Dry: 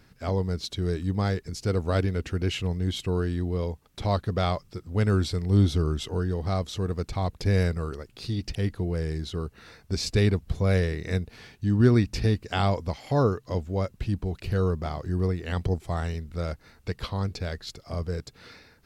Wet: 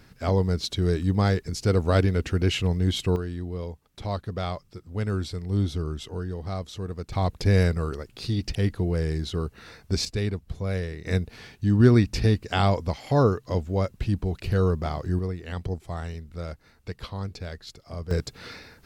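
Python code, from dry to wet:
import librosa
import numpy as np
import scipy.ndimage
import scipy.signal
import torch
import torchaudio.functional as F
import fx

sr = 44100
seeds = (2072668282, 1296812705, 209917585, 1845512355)

y = fx.gain(x, sr, db=fx.steps((0.0, 4.0), (3.16, -4.5), (7.12, 3.0), (10.05, -5.5), (11.06, 2.5), (15.19, -4.0), (18.11, 7.0)))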